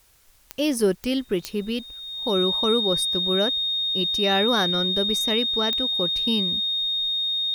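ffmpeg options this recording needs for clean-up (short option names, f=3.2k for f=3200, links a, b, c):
-af "adeclick=t=4,bandreject=f=3.7k:w=30,agate=range=-21dB:threshold=-35dB"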